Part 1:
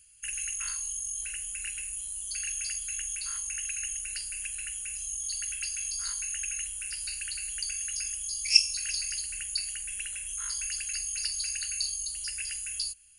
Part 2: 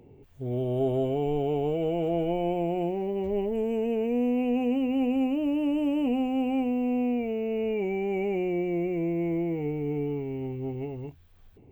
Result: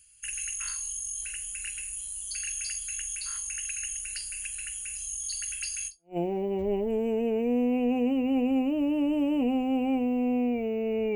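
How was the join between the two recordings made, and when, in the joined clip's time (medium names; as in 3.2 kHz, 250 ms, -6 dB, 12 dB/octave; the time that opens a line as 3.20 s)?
part 1
6.02 s: go over to part 2 from 2.67 s, crossfade 0.30 s exponential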